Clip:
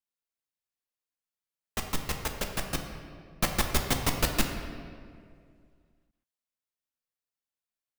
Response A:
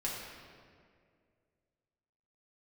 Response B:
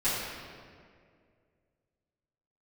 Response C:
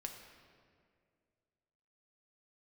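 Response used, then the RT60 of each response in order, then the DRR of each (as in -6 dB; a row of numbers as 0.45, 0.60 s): C; 2.2, 2.1, 2.2 s; -5.5, -15.5, 2.5 dB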